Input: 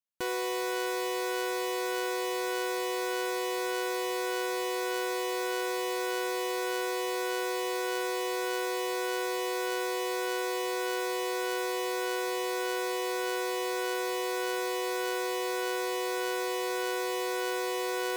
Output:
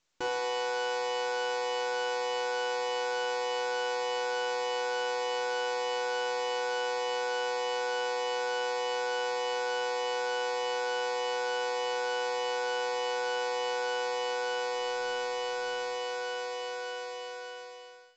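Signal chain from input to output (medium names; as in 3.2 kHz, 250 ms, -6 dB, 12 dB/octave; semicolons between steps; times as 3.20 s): fade out at the end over 4.47 s; 14.75–15.96 s: bass shelf 73 Hz +6.5 dB; saturation -35 dBFS, distortion -10 dB; FDN reverb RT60 0.87 s, low-frequency decay 1.05×, high-frequency decay 1×, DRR 3 dB; trim +4.5 dB; µ-law 128 kbps 16 kHz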